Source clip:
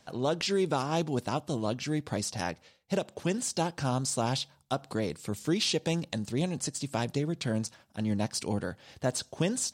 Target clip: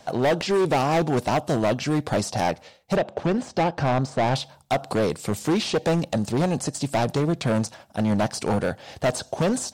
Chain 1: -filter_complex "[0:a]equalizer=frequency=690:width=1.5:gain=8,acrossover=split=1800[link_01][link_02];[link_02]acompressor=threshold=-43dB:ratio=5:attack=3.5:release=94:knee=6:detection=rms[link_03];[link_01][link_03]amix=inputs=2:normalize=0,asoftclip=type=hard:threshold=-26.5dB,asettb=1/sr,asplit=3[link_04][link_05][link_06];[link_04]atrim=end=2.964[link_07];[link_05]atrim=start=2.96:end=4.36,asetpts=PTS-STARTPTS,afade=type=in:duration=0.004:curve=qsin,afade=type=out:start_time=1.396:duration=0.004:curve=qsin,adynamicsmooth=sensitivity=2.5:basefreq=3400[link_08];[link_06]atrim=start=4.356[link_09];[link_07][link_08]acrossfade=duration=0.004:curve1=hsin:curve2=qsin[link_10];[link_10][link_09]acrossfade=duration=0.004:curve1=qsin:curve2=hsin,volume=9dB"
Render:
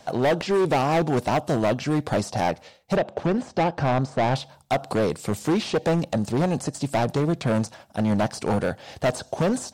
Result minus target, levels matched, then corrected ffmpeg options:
downward compressor: peak gain reduction +5 dB
-filter_complex "[0:a]equalizer=frequency=690:width=1.5:gain=8,acrossover=split=1800[link_01][link_02];[link_02]acompressor=threshold=-37dB:ratio=5:attack=3.5:release=94:knee=6:detection=rms[link_03];[link_01][link_03]amix=inputs=2:normalize=0,asoftclip=type=hard:threshold=-26.5dB,asettb=1/sr,asplit=3[link_04][link_05][link_06];[link_04]atrim=end=2.964[link_07];[link_05]atrim=start=2.96:end=4.36,asetpts=PTS-STARTPTS,afade=type=in:duration=0.004:curve=qsin,afade=type=out:start_time=1.396:duration=0.004:curve=qsin,adynamicsmooth=sensitivity=2.5:basefreq=3400[link_08];[link_06]atrim=start=4.356[link_09];[link_07][link_08]acrossfade=duration=0.004:curve1=hsin:curve2=qsin[link_10];[link_10][link_09]acrossfade=duration=0.004:curve1=qsin:curve2=hsin,volume=9dB"

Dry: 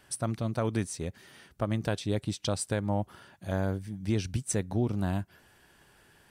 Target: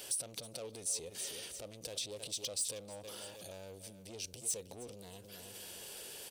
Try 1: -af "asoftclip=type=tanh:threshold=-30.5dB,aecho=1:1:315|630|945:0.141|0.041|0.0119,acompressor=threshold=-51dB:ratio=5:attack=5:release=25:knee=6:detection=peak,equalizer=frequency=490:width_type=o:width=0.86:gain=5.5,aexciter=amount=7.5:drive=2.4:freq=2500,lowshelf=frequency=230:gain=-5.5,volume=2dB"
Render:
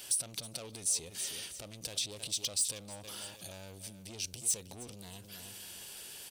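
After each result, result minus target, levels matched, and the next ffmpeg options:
500 Hz band −8.0 dB; downward compressor: peak gain reduction −5 dB
-af "asoftclip=type=tanh:threshold=-30.5dB,aecho=1:1:315|630|945:0.141|0.041|0.0119,acompressor=threshold=-51dB:ratio=5:attack=5:release=25:knee=6:detection=peak,equalizer=frequency=490:width_type=o:width=0.86:gain=16,aexciter=amount=7.5:drive=2.4:freq=2500,lowshelf=frequency=230:gain=-5.5,volume=2dB"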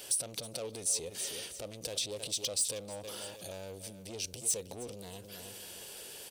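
downward compressor: peak gain reduction −5 dB
-af "asoftclip=type=tanh:threshold=-30.5dB,aecho=1:1:315|630|945:0.141|0.041|0.0119,acompressor=threshold=-57.5dB:ratio=5:attack=5:release=25:knee=6:detection=peak,equalizer=frequency=490:width_type=o:width=0.86:gain=16,aexciter=amount=7.5:drive=2.4:freq=2500,lowshelf=frequency=230:gain=-5.5,volume=2dB"

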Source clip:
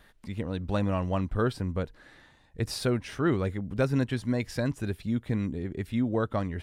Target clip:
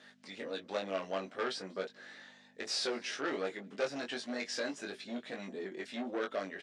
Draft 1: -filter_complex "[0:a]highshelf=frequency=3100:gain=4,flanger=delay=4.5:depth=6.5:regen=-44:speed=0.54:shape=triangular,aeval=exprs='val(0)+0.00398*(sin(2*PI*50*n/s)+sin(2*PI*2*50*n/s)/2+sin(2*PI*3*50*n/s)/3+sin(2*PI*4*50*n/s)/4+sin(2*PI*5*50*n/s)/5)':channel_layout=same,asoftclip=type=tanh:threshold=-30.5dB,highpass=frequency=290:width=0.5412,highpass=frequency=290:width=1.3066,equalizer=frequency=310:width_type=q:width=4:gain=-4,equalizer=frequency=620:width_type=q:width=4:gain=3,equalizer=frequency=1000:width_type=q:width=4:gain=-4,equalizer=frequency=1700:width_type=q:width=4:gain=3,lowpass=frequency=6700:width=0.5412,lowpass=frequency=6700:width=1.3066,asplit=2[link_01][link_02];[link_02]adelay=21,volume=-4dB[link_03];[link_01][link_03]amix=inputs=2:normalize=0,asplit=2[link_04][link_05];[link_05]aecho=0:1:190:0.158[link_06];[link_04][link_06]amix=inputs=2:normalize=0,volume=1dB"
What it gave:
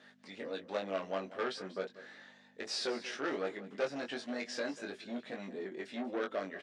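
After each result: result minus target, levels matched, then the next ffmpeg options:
echo-to-direct +11.5 dB; 8,000 Hz band −3.5 dB
-filter_complex "[0:a]highshelf=frequency=3100:gain=4,flanger=delay=4.5:depth=6.5:regen=-44:speed=0.54:shape=triangular,aeval=exprs='val(0)+0.00398*(sin(2*PI*50*n/s)+sin(2*PI*2*50*n/s)/2+sin(2*PI*3*50*n/s)/3+sin(2*PI*4*50*n/s)/4+sin(2*PI*5*50*n/s)/5)':channel_layout=same,asoftclip=type=tanh:threshold=-30.5dB,highpass=frequency=290:width=0.5412,highpass=frequency=290:width=1.3066,equalizer=frequency=310:width_type=q:width=4:gain=-4,equalizer=frequency=620:width_type=q:width=4:gain=3,equalizer=frequency=1000:width_type=q:width=4:gain=-4,equalizer=frequency=1700:width_type=q:width=4:gain=3,lowpass=frequency=6700:width=0.5412,lowpass=frequency=6700:width=1.3066,asplit=2[link_01][link_02];[link_02]adelay=21,volume=-4dB[link_03];[link_01][link_03]amix=inputs=2:normalize=0,asplit=2[link_04][link_05];[link_05]aecho=0:1:190:0.0422[link_06];[link_04][link_06]amix=inputs=2:normalize=0,volume=1dB"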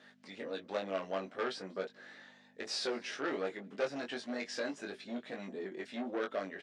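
8,000 Hz band −3.5 dB
-filter_complex "[0:a]highshelf=frequency=3100:gain=10.5,flanger=delay=4.5:depth=6.5:regen=-44:speed=0.54:shape=triangular,aeval=exprs='val(0)+0.00398*(sin(2*PI*50*n/s)+sin(2*PI*2*50*n/s)/2+sin(2*PI*3*50*n/s)/3+sin(2*PI*4*50*n/s)/4+sin(2*PI*5*50*n/s)/5)':channel_layout=same,asoftclip=type=tanh:threshold=-30.5dB,highpass=frequency=290:width=0.5412,highpass=frequency=290:width=1.3066,equalizer=frequency=310:width_type=q:width=4:gain=-4,equalizer=frequency=620:width_type=q:width=4:gain=3,equalizer=frequency=1000:width_type=q:width=4:gain=-4,equalizer=frequency=1700:width_type=q:width=4:gain=3,lowpass=frequency=6700:width=0.5412,lowpass=frequency=6700:width=1.3066,asplit=2[link_01][link_02];[link_02]adelay=21,volume=-4dB[link_03];[link_01][link_03]amix=inputs=2:normalize=0,asplit=2[link_04][link_05];[link_05]aecho=0:1:190:0.0422[link_06];[link_04][link_06]amix=inputs=2:normalize=0,volume=1dB"

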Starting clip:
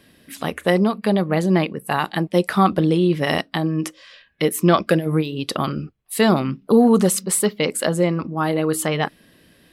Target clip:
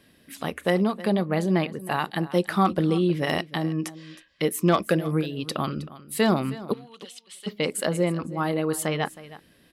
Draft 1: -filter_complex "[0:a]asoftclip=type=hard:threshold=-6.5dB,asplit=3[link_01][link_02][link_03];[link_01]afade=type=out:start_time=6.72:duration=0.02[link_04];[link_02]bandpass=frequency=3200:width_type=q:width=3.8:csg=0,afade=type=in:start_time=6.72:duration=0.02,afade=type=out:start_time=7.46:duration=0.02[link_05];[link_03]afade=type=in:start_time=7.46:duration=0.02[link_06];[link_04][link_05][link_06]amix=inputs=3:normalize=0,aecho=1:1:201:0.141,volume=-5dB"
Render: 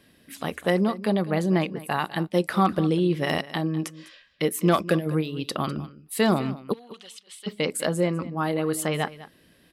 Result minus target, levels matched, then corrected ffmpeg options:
echo 115 ms early
-filter_complex "[0:a]asoftclip=type=hard:threshold=-6.5dB,asplit=3[link_01][link_02][link_03];[link_01]afade=type=out:start_time=6.72:duration=0.02[link_04];[link_02]bandpass=frequency=3200:width_type=q:width=3.8:csg=0,afade=type=in:start_time=6.72:duration=0.02,afade=type=out:start_time=7.46:duration=0.02[link_05];[link_03]afade=type=in:start_time=7.46:duration=0.02[link_06];[link_04][link_05][link_06]amix=inputs=3:normalize=0,aecho=1:1:316:0.141,volume=-5dB"

